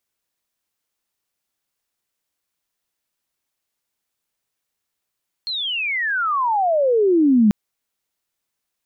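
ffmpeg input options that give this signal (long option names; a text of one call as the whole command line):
ffmpeg -f lavfi -i "aevalsrc='pow(10,(-22.5+12.5*t/2.04)/20)*sin(2*PI*4300*2.04/log(200/4300)*(exp(log(200/4300)*t/2.04)-1))':duration=2.04:sample_rate=44100" out.wav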